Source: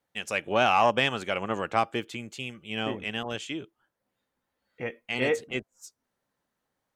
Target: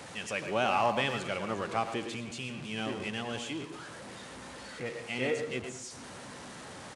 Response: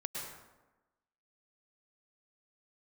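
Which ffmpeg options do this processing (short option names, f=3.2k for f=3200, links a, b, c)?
-filter_complex "[0:a]aeval=exprs='val(0)+0.5*0.0251*sgn(val(0))':c=same,highpass=71,asplit=2[a][b];[b]lowshelf=f=370:g=10[c];[1:a]atrim=start_sample=2205,afade=t=out:st=0.31:d=0.01,atrim=end_sample=14112[d];[c][d]afir=irnorm=-1:irlink=0,volume=-12dB[e];[a][e]amix=inputs=2:normalize=0,aresample=22050,aresample=44100,asplit=2[f][g];[g]adelay=110,highpass=300,lowpass=3.4k,asoftclip=type=hard:threshold=-16dB,volume=-8dB[h];[f][h]amix=inputs=2:normalize=0,volume=-9dB"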